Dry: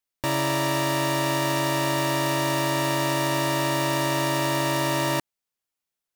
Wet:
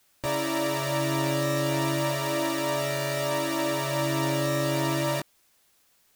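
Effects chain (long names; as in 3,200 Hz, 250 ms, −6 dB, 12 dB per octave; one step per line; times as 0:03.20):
formants moved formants −3 semitones
chorus effect 0.33 Hz, delay 16.5 ms, depth 5.5 ms
background noise white −65 dBFS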